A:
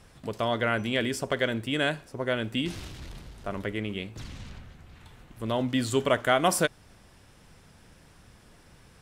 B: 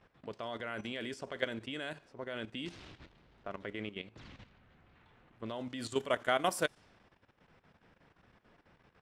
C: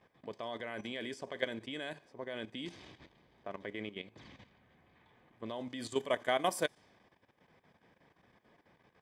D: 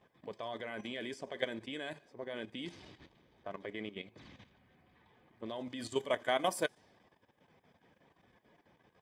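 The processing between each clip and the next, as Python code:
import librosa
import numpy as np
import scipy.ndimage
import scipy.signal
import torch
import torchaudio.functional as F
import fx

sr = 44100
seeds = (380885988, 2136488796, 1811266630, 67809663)

y1 = fx.env_lowpass(x, sr, base_hz=2400.0, full_db=-20.5)
y1 = fx.low_shelf(y1, sr, hz=140.0, db=-12.0)
y1 = fx.level_steps(y1, sr, step_db=12)
y1 = F.gain(torch.from_numpy(y1), -4.0).numpy()
y2 = fx.notch_comb(y1, sr, f0_hz=1400.0)
y3 = fx.spec_quant(y2, sr, step_db=15)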